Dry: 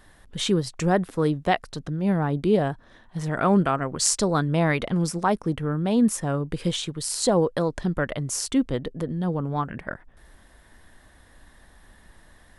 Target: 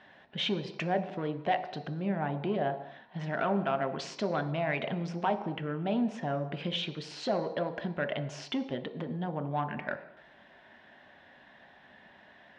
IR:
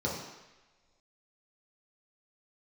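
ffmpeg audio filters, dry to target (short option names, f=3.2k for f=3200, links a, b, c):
-filter_complex "[0:a]acompressor=threshold=-27dB:ratio=2.5,asoftclip=type=tanh:threshold=-20.5dB,highpass=270,equalizer=f=280:t=q:w=4:g=-5,equalizer=f=480:t=q:w=4:g=-6,equalizer=f=680:t=q:w=4:g=5,equalizer=f=1.2k:t=q:w=4:g=-8,equalizer=f=2.5k:t=q:w=4:g=4,lowpass=f=3.7k:w=0.5412,lowpass=f=3.7k:w=1.3066,asplit=2[a][b];[1:a]atrim=start_sample=2205,afade=t=out:st=0.36:d=0.01,atrim=end_sample=16317,lowshelf=f=350:g=-7.5[c];[b][c]afir=irnorm=-1:irlink=0,volume=-13.5dB[d];[a][d]amix=inputs=2:normalize=0,volume=2.5dB"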